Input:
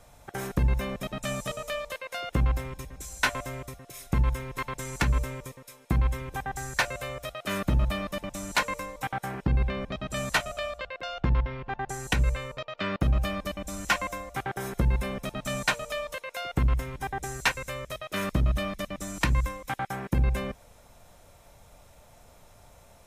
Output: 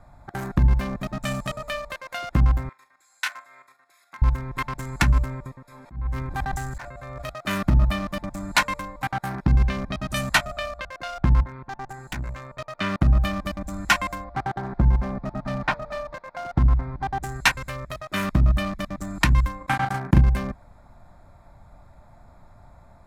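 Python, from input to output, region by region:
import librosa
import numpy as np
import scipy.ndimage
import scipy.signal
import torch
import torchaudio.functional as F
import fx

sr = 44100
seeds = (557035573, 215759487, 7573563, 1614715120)

y = fx.chain(x, sr, fx.highpass(hz=1400.0, slope=12),
    fx.level_steps(step_db=10),
    fx.room_flutter(wall_m=7.8, rt60_s=0.22), at=(2.69, 4.22))
y = fx.chain(y, sr, fx.auto_swell(attack_ms=482.0),
    fx.sustainer(db_per_s=25.0), at=(5.65, 7.3))
y = fx.chain(y, sr, fx.high_shelf(hz=3900.0, db=7.5),
    fx.notch(hz=7400.0, q=5.3), at=(9.25, 10.21))
y = fx.chain(y, sr, fx.highpass(hz=140.0, slope=6),
    fx.tube_stage(drive_db=32.0, bias=0.7), at=(11.43, 12.59))
y = fx.chain(y, sr, fx.cvsd(bps=32000),
    fx.lowpass(hz=1500.0, slope=6),
    fx.peak_eq(hz=780.0, db=4.0, octaves=0.68), at=(14.24, 17.22))
y = fx.chain(y, sr, fx.lowpass(hz=12000.0, slope=12),
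    fx.transient(attack_db=4, sustain_db=-10),
    fx.doubler(ms=38.0, db=-4.0), at=(19.57, 20.21))
y = fx.wiener(y, sr, points=15)
y = fx.peak_eq(y, sr, hz=470.0, db=-14.0, octaves=0.5)
y = F.gain(torch.from_numpy(y), 6.5).numpy()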